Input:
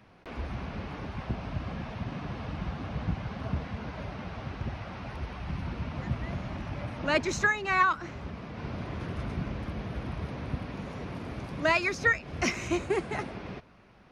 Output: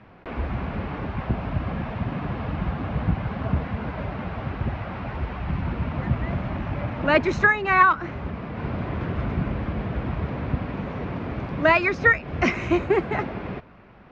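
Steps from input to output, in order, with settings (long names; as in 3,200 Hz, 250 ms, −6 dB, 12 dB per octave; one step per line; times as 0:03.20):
low-pass filter 2,500 Hz 12 dB per octave
level +8 dB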